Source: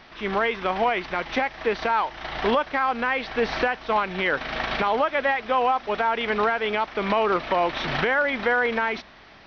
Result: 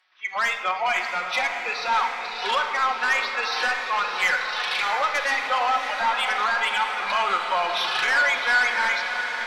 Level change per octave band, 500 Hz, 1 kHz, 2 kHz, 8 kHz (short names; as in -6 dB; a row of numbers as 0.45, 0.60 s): -8.5 dB, +0.5 dB, +4.0 dB, n/a